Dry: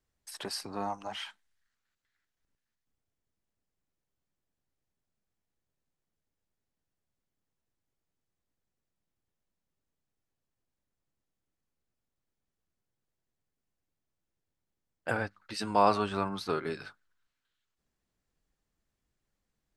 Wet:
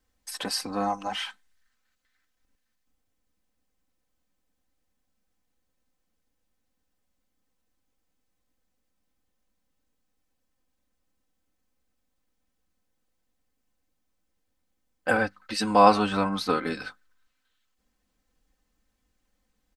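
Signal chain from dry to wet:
comb filter 3.9 ms, depth 70%
level +6 dB

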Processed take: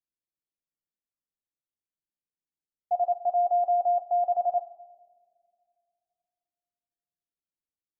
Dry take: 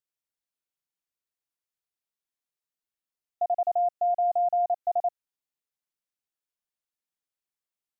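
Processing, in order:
played backwards from end to start
coupled-rooms reverb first 0.22 s, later 2.7 s, from −19 dB, DRR 8 dB
low-pass that shuts in the quiet parts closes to 400 Hz, open at −19.5 dBFS

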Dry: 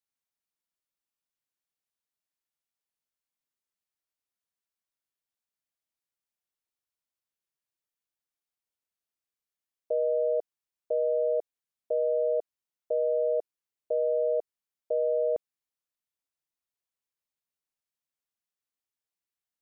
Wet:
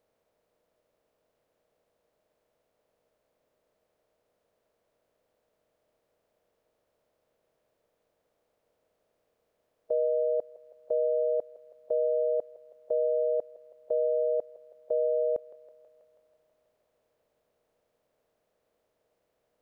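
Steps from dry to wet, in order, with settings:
compressor on every frequency bin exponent 0.6
feedback echo with a high-pass in the loop 162 ms, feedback 83%, high-pass 450 Hz, level −16 dB

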